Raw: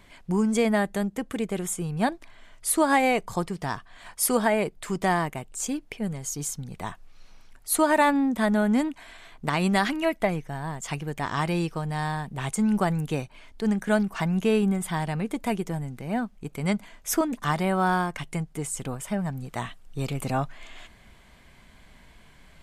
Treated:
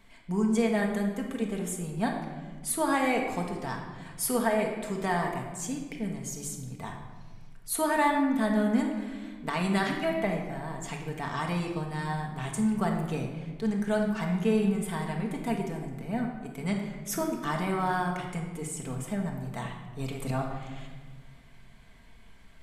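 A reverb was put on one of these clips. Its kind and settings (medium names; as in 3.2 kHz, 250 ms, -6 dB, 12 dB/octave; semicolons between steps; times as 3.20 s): simulated room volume 1200 m³, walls mixed, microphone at 1.6 m; trim -7 dB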